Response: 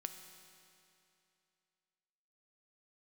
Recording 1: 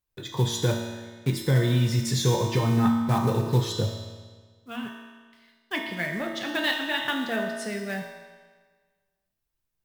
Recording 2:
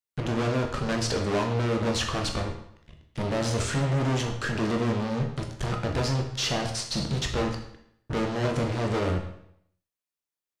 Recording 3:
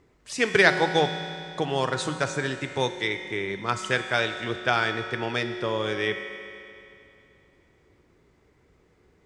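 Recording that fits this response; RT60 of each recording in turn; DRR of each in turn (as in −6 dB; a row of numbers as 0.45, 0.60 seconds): 3; 1.5, 0.70, 2.7 seconds; 0.5, 2.0, 6.5 decibels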